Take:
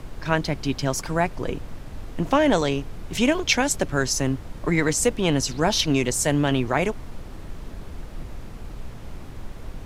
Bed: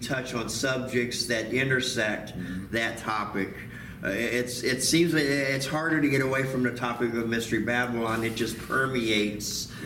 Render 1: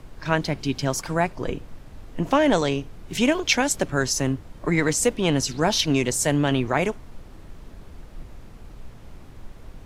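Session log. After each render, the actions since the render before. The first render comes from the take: noise print and reduce 6 dB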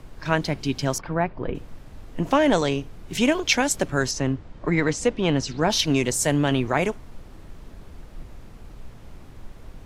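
0.98–1.55 s: distance through air 380 m; 4.11–5.70 s: distance through air 99 m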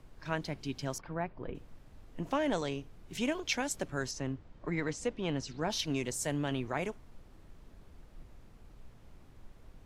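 trim -12.5 dB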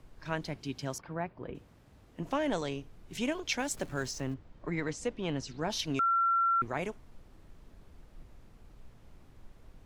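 0.56–2.22 s: high-pass 58 Hz; 3.59–4.34 s: jump at every zero crossing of -48.5 dBFS; 5.99–6.62 s: bleep 1.36 kHz -24 dBFS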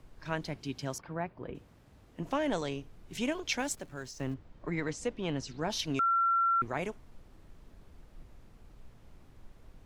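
3.75–4.20 s: gain -7.5 dB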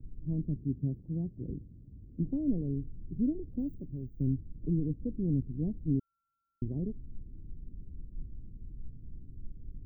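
inverse Chebyshev band-stop 1.7–9.2 kHz, stop band 80 dB; bass shelf 260 Hz +11 dB

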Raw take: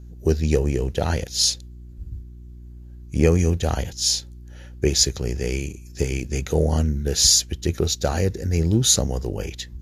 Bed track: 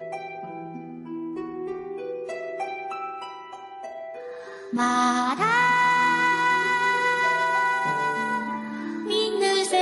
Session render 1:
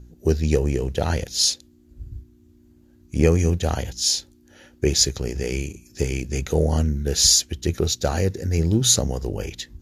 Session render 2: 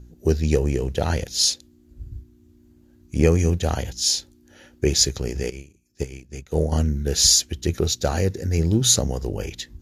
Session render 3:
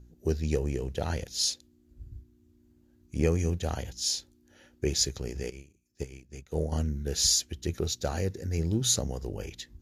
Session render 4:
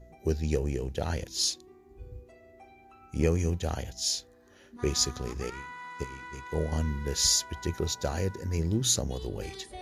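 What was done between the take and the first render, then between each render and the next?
de-hum 60 Hz, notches 3
5.50–6.72 s: upward expansion 2.5:1, over -29 dBFS
trim -8.5 dB
add bed track -23 dB

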